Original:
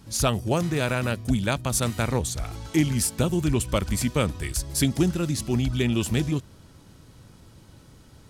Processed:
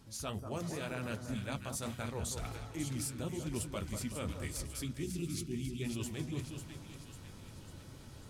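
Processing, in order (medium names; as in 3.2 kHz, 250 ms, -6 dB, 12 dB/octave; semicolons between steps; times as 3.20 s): time-frequency box 4.83–5.82 s, 470–2000 Hz -19 dB; hum notches 60/120/180 Hz; reverse; compression 5:1, threshold -36 dBFS, peak gain reduction 17.5 dB; reverse; flange 2 Hz, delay 7 ms, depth 4.7 ms, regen -43%; on a send: two-band feedback delay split 1.4 kHz, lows 190 ms, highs 546 ms, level -7 dB; on the sum: trim +2 dB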